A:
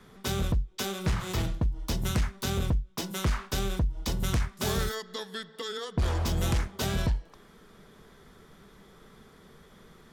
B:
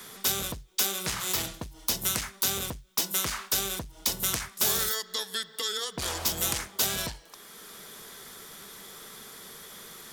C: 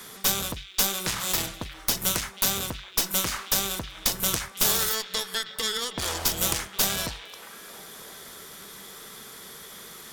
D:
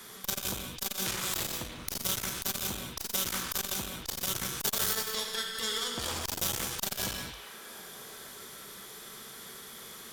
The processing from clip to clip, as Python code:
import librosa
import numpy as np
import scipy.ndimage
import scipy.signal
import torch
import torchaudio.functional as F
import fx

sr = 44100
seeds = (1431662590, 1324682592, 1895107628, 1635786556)

y1 = fx.riaa(x, sr, side='recording')
y1 = fx.band_squash(y1, sr, depth_pct=40)
y2 = fx.cheby_harmonics(y1, sr, harmonics=(8,), levels_db=(-17,), full_scale_db=-5.0)
y2 = fx.echo_stepped(y2, sr, ms=316, hz=2700.0, octaves=-0.7, feedback_pct=70, wet_db=-10.5)
y2 = y2 * 10.0 ** (2.0 / 20.0)
y3 = fx.rev_gated(y2, sr, seeds[0], gate_ms=250, shape='flat', drr_db=0.5)
y3 = fx.transformer_sat(y3, sr, knee_hz=2100.0)
y3 = y3 * 10.0 ** (-5.5 / 20.0)